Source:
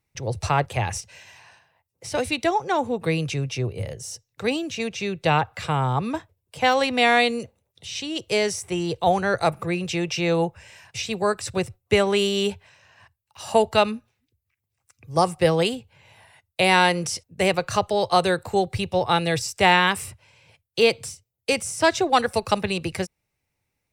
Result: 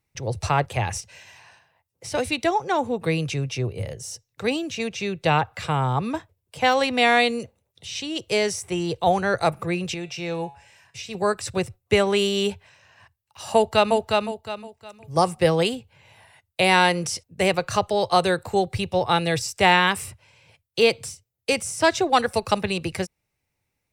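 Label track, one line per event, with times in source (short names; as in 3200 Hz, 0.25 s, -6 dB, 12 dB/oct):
9.940000	11.150000	resonator 140 Hz, decay 0.51 s
13.540000	13.950000	echo throw 0.36 s, feedback 30%, level -3 dB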